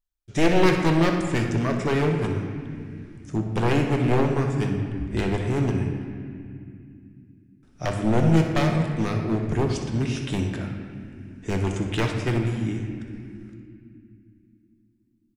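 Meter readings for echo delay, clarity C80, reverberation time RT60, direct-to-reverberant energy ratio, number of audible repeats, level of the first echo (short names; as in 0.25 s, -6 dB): 62 ms, 6.0 dB, 2.5 s, 2.5 dB, 1, -12.0 dB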